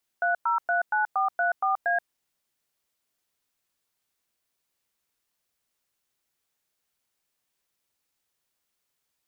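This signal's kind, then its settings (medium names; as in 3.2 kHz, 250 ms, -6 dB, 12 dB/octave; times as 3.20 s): DTMF "3039434A", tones 129 ms, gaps 105 ms, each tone -24 dBFS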